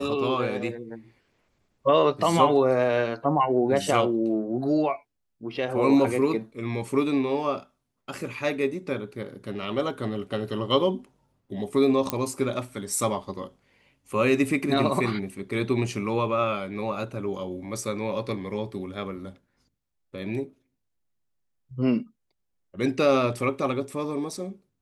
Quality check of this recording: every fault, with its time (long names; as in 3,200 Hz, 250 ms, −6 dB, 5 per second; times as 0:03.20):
0:12.10: click −8 dBFS